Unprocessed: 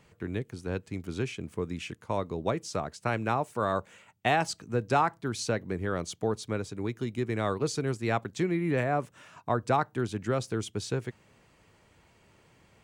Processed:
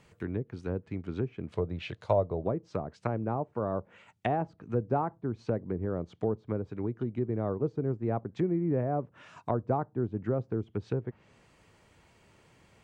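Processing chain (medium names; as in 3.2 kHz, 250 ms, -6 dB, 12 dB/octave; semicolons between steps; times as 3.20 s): low-pass that closes with the level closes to 660 Hz, closed at -28 dBFS; 1.52–2.44 s: fifteen-band graphic EQ 100 Hz +6 dB, 250 Hz -7 dB, 630 Hz +11 dB, 4 kHz +11 dB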